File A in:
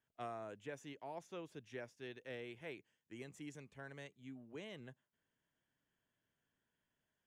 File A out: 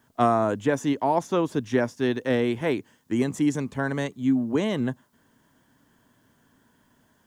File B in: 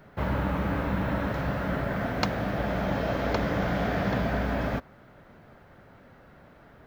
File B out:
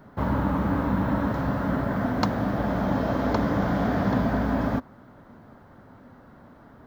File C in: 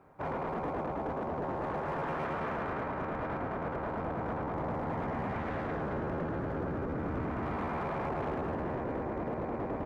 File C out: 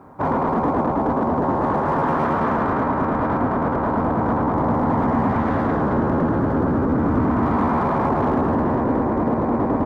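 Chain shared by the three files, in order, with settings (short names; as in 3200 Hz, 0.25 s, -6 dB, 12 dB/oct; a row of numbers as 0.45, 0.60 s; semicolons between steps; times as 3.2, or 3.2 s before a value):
fifteen-band EQ 100 Hz +4 dB, 250 Hz +9 dB, 1000 Hz +6 dB, 2500 Hz -7 dB; normalise peaks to -9 dBFS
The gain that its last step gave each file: +22.0, -0.5, +11.0 dB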